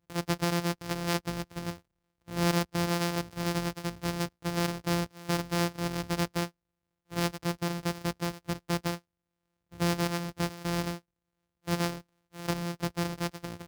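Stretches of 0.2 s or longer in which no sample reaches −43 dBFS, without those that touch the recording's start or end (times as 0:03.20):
0:01.78–0:02.28
0:06.48–0:07.11
0:08.98–0:09.73
0:10.98–0:11.67
0:12.01–0:12.34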